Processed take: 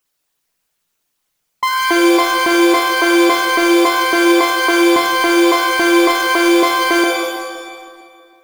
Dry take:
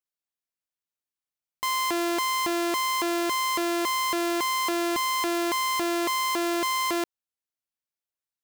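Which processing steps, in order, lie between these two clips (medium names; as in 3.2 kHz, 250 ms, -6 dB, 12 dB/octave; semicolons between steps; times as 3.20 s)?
resonances exaggerated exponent 2; modulation noise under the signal 25 dB; bucket-brigade echo 323 ms, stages 2048, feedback 42%, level -21.5 dB; loudness maximiser +28.5 dB; pitch-shifted reverb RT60 1.1 s, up +7 st, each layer -2 dB, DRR 4 dB; trim -8.5 dB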